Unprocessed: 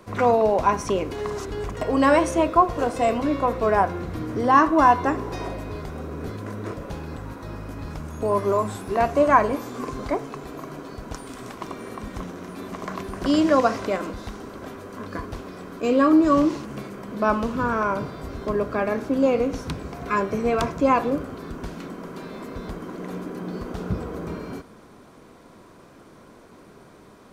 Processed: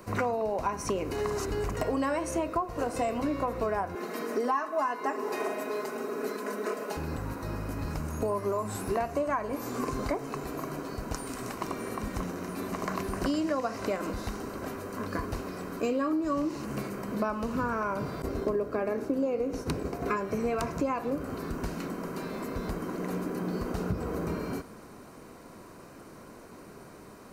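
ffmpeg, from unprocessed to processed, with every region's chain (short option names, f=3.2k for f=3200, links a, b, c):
-filter_complex "[0:a]asettb=1/sr,asplit=3[a][b][c];[a]atrim=end=3.954[d];[b]atrim=start=3.95:end=6.97,asetpts=PTS-STARTPTS,afade=t=in:d=0.004:c=qsin,afade=t=out:st=3.016:d=0.004:c=qsin,highpass=f=280:w=0.5412,highpass=f=280:w=1.3066,aecho=1:1:4.7:0.87,atrim=end_sample=133182[e];[c]atrim=start=6.966[f];[d][e]acrossfade=d=0.004:c1=hsin:c2=qsin[g];[g][f]acrossfade=d=0.004:c1=qsin:c2=hsin,asettb=1/sr,asplit=3[h][i][j];[h]atrim=end=18.224[k];[i]atrim=start=18.22:end=20.17,asetpts=PTS-STARTPTS,afade=t=in:d=0.004:c=qsin,afade=t=out:st=1.946:d=0.004:c=qsin,agate=range=-33dB:threshold=-32dB:ratio=3:release=100:detection=peak,equalizer=f=400:w=1:g=7.5[l];[j]atrim=start=20.166[m];[k][l]acrossfade=d=0.004:c1=hsin:c2=qsin[n];[n][m]acrossfade=d=0.004:c1=qsin:c2=hsin,highshelf=f=9.9k:g=9.5,bandreject=f=3.4k:w=6.1,acompressor=threshold=-26dB:ratio=10"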